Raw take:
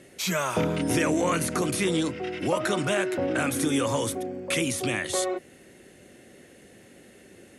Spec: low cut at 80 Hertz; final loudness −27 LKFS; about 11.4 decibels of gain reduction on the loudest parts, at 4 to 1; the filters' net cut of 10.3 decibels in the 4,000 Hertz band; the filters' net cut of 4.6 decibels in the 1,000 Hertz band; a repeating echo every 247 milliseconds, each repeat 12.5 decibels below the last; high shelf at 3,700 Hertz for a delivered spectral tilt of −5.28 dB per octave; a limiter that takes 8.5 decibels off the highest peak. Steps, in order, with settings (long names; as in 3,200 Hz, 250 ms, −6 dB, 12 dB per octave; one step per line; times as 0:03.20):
high-pass filter 80 Hz
parametric band 1,000 Hz −5 dB
high-shelf EQ 3,700 Hz −7.5 dB
parametric band 4,000 Hz −9 dB
downward compressor 4 to 1, threshold −36 dBFS
brickwall limiter −31.5 dBFS
repeating echo 247 ms, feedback 24%, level −12.5 dB
level +13 dB